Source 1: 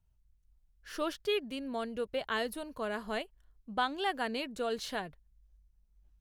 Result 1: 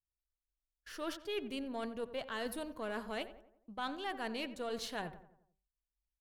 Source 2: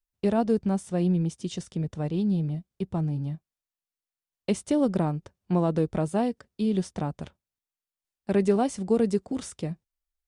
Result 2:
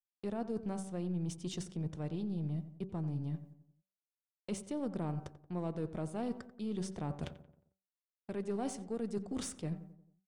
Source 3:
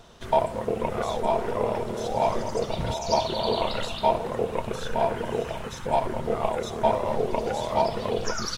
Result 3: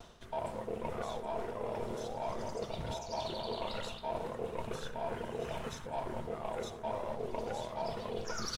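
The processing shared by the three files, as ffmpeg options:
-filter_complex "[0:a]bandreject=f=191.5:t=h:w=4,bandreject=f=383:t=h:w=4,bandreject=f=574.5:t=h:w=4,bandreject=f=766:t=h:w=4,bandreject=f=957.5:t=h:w=4,bandreject=f=1149:t=h:w=4,bandreject=f=1340.5:t=h:w=4,bandreject=f=1532:t=h:w=4,agate=range=0.0398:threshold=0.00178:ratio=16:detection=peak,areverse,acompressor=threshold=0.0126:ratio=5,areverse,aeval=exprs='0.0631*(cos(1*acos(clip(val(0)/0.0631,-1,1)))-cos(1*PI/2))+0.00178*(cos(8*acos(clip(val(0)/0.0631,-1,1)))-cos(8*PI/2))':c=same,asplit=2[s0][s1];[s1]adelay=89,lowpass=f=1800:p=1,volume=0.224,asplit=2[s2][s3];[s3]adelay=89,lowpass=f=1800:p=1,volume=0.5,asplit=2[s4][s5];[s5]adelay=89,lowpass=f=1800:p=1,volume=0.5,asplit=2[s6][s7];[s7]adelay=89,lowpass=f=1800:p=1,volume=0.5,asplit=2[s8][s9];[s9]adelay=89,lowpass=f=1800:p=1,volume=0.5[s10];[s0][s2][s4][s6][s8][s10]amix=inputs=6:normalize=0,volume=1.12"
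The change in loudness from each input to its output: -5.5 LU, -12.0 LU, -12.5 LU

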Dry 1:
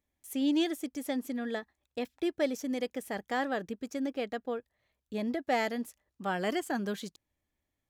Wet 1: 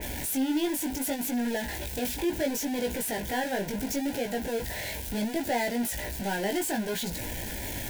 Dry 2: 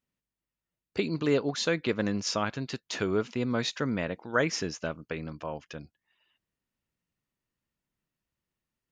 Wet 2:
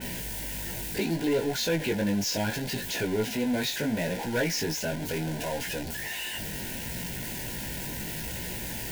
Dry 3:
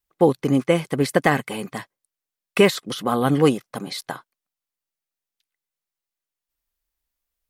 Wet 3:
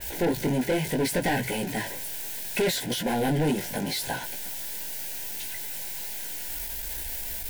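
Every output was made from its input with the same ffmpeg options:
-af "aeval=exprs='val(0)+0.5*0.0531*sgn(val(0))':c=same,highshelf=f=7500:g=9,flanger=delay=16.5:depth=3.8:speed=0.7,volume=11.2,asoftclip=hard,volume=0.0891,asuperstop=centerf=1200:order=12:qfactor=3.1,adynamicequalizer=threshold=0.00794:dfrequency=3400:dqfactor=0.7:tfrequency=3400:tqfactor=0.7:attack=5:release=100:ratio=0.375:range=2.5:mode=cutabove:tftype=highshelf"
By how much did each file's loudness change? +3.5 LU, +0.5 LU, -7.5 LU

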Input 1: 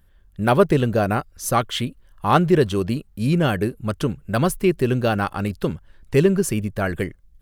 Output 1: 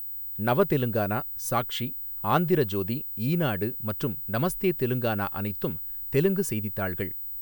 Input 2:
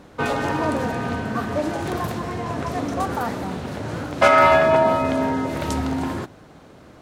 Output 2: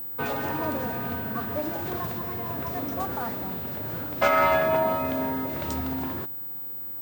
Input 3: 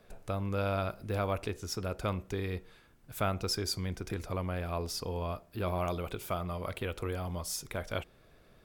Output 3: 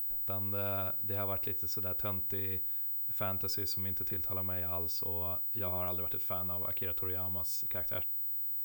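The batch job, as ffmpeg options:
-af "aeval=exprs='val(0)+0.0562*sin(2*PI*16000*n/s)':c=same,aeval=exprs='0.944*(cos(1*acos(clip(val(0)/0.944,-1,1)))-cos(1*PI/2))+0.0133*(cos(4*acos(clip(val(0)/0.944,-1,1)))-cos(4*PI/2))':c=same,volume=0.447"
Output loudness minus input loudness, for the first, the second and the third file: -5.5 LU, -5.5 LU, +4.0 LU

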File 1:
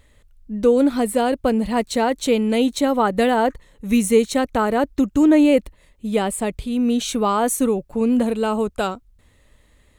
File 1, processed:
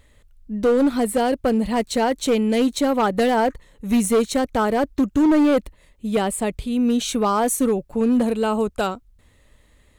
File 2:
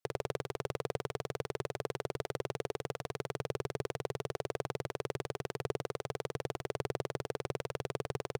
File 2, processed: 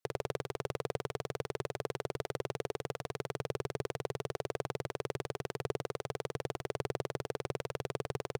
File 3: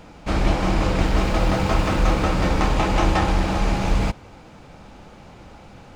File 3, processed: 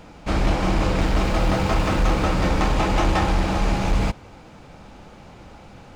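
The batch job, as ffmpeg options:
-af "asoftclip=type=hard:threshold=0.224"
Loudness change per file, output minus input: -1.0 LU, 0.0 LU, -0.5 LU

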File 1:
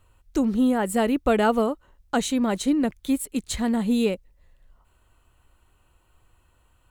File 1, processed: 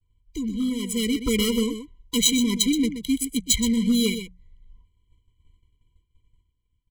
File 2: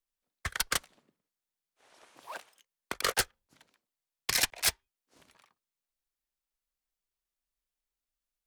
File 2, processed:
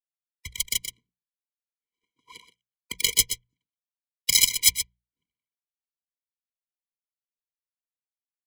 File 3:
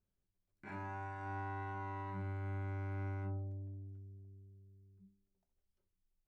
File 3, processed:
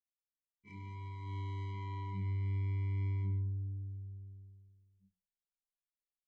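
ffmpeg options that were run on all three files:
-filter_complex "[0:a]adynamicsmooth=sensitivity=6:basefreq=1900,asuperstop=centerf=1300:order=8:qfactor=2,equalizer=f=700:w=3.1:g=-6.5,aecho=1:1:1.3:0.56,asplit=2[s0][s1];[s1]aecho=0:1:125:0.316[s2];[s0][s2]amix=inputs=2:normalize=0,volume=6.31,asoftclip=hard,volume=0.158,agate=range=0.0224:threshold=0.00316:ratio=3:detection=peak,highshelf=f=2500:g=7,dynaudnorm=f=150:g=13:m=2.51,crystalizer=i=2.5:c=0,bandreject=f=60:t=h:w=6,bandreject=f=120:t=h:w=6,bandreject=f=180:t=h:w=6,afftfilt=real='re*eq(mod(floor(b*sr/1024/480),2),0)':imag='im*eq(mod(floor(b*sr/1024/480),2),0)':win_size=1024:overlap=0.75,volume=0.531"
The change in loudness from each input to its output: +1.0 LU, +8.5 LU, +4.5 LU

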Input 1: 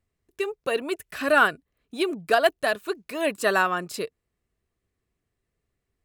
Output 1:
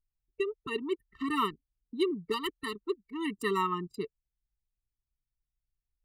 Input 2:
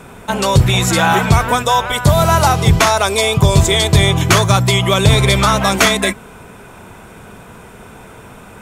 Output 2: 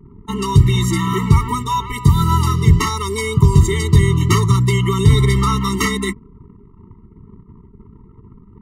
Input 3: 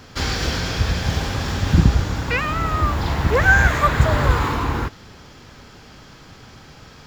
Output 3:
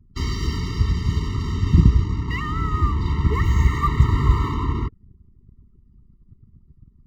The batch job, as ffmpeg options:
-af "lowshelf=f=280:g=6.5,anlmdn=39.8,afftfilt=real='re*eq(mod(floor(b*sr/1024/450),2),0)':imag='im*eq(mod(floor(b*sr/1024/450),2),0)':win_size=1024:overlap=0.75,volume=0.562"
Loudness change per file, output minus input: -9.0 LU, -3.0 LU, -2.0 LU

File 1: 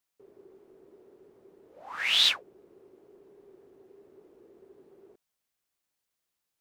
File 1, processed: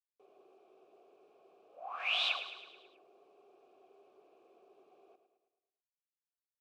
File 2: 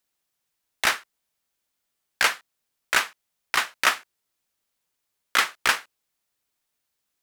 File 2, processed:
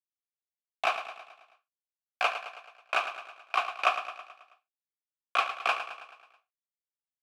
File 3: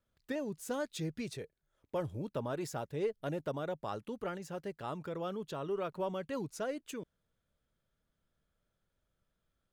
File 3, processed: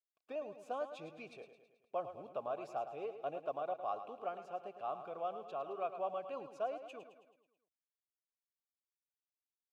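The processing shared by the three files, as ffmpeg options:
-filter_complex "[0:a]acrusher=bits=10:mix=0:aa=0.000001,asplit=3[s0][s1][s2];[s0]bandpass=f=730:t=q:w=8,volume=1[s3];[s1]bandpass=f=1090:t=q:w=8,volume=0.501[s4];[s2]bandpass=f=2440:t=q:w=8,volume=0.355[s5];[s3][s4][s5]amix=inputs=3:normalize=0,aecho=1:1:108|216|324|432|540|648:0.299|0.161|0.0871|0.047|0.0254|0.0137,volume=2.37"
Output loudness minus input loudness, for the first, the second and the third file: -11.0 LU, -6.5 LU, -3.5 LU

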